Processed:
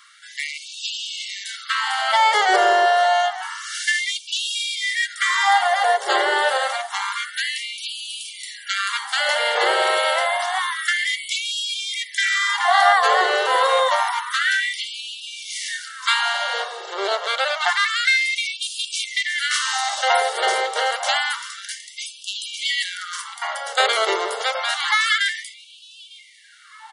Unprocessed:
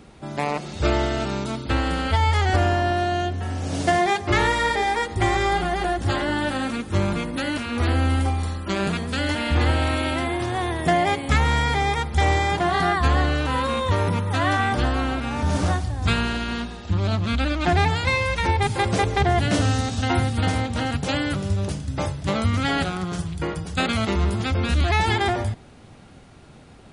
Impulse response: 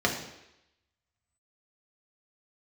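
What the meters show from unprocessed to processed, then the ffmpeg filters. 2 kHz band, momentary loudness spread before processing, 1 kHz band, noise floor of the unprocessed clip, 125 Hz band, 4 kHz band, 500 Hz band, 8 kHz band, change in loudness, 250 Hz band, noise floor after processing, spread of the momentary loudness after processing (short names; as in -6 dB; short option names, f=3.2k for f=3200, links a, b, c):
+6.0 dB, 7 LU, +3.5 dB, -46 dBFS, under -40 dB, +8.0 dB, +1.0 dB, +8.0 dB, +2.5 dB, under -15 dB, -44 dBFS, 13 LU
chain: -filter_complex "[0:a]aeval=exprs='0.447*(cos(1*acos(clip(val(0)/0.447,-1,1)))-cos(1*PI/2))+0.00282*(cos(7*acos(clip(val(0)/0.447,-1,1)))-cos(7*PI/2))':c=same,asuperstop=centerf=2500:order=8:qfactor=7.8,bandreject=f=45.14:t=h:w=4,bandreject=f=90.28:t=h:w=4,bandreject=f=135.42:t=h:w=4,bandreject=f=180.56:t=h:w=4,bandreject=f=225.7:t=h:w=4,bandreject=f=270.84:t=h:w=4,bandreject=f=315.98:t=h:w=4,bandreject=f=361.12:t=h:w=4,bandreject=f=406.26:t=h:w=4,bandreject=f=451.4:t=h:w=4,bandreject=f=496.54:t=h:w=4,bandreject=f=541.68:t=h:w=4,bandreject=f=586.82:t=h:w=4,bandreject=f=631.96:t=h:w=4,bandreject=f=677.1:t=h:w=4,bandreject=f=722.24:t=h:w=4,bandreject=f=767.38:t=h:w=4,bandreject=f=812.52:t=h:w=4,bandreject=f=857.66:t=h:w=4,bandreject=f=902.8:t=h:w=4,bandreject=f=947.94:t=h:w=4,bandreject=f=993.08:t=h:w=4,bandreject=f=1.03822k:t=h:w=4,bandreject=f=1.08336k:t=h:w=4,bandreject=f=1.1285k:t=h:w=4,bandreject=f=1.17364k:t=h:w=4,bandreject=f=1.21878k:t=h:w=4,bandreject=f=1.26392k:t=h:w=4,bandreject=f=1.30906k:t=h:w=4,bandreject=f=1.3542k:t=h:w=4,bandreject=f=1.39934k:t=h:w=4,bandreject=f=1.44448k:t=h:w=4,asplit=2[a][b];[b]adelay=901,lowpass=f=1.8k:p=1,volume=-12.5dB,asplit=2[c][d];[d]adelay=901,lowpass=f=1.8k:p=1,volume=0.35,asplit=2[e][f];[f]adelay=901,lowpass=f=1.8k:p=1,volume=0.35,asplit=2[g][h];[h]adelay=901,lowpass=f=1.8k:p=1,volume=0.35[i];[c][e][g][i]amix=inputs=4:normalize=0[j];[a][j]amix=inputs=2:normalize=0,afftfilt=real='re*gte(b*sr/1024,370*pow(2400/370,0.5+0.5*sin(2*PI*0.28*pts/sr)))':imag='im*gte(b*sr/1024,370*pow(2400/370,0.5+0.5*sin(2*PI*0.28*pts/sr)))':win_size=1024:overlap=0.75,volume=8dB"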